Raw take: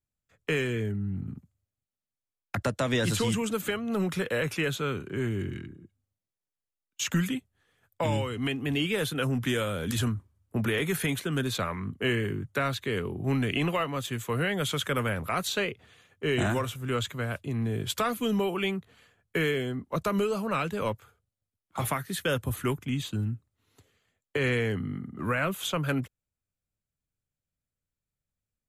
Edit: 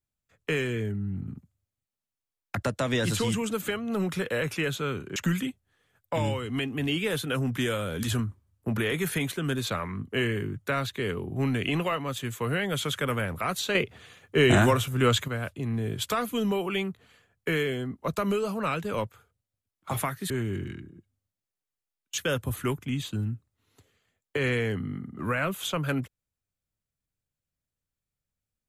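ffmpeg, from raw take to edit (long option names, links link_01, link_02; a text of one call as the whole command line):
ffmpeg -i in.wav -filter_complex "[0:a]asplit=6[link_01][link_02][link_03][link_04][link_05][link_06];[link_01]atrim=end=5.162[link_07];[link_02]atrim=start=7.038:end=15.632[link_08];[link_03]atrim=start=15.628:end=17.162,asetpts=PTS-STARTPTS,volume=7dB[link_09];[link_04]atrim=start=17.158:end=22.182[link_10];[link_05]atrim=start=5.158:end=7.042[link_11];[link_06]atrim=start=22.178[link_12];[link_07][link_08]acrossfade=duration=0.004:curve1=hsin:curve2=hsin[link_13];[link_13][link_09]acrossfade=duration=0.004:curve1=hsin:curve2=hsin[link_14];[link_14][link_10]acrossfade=duration=0.004:curve1=hsin:curve2=hsin[link_15];[link_15][link_11]acrossfade=duration=0.004:curve1=hsin:curve2=hsin[link_16];[link_16][link_12]acrossfade=duration=0.004:curve1=hsin:curve2=hsin" out.wav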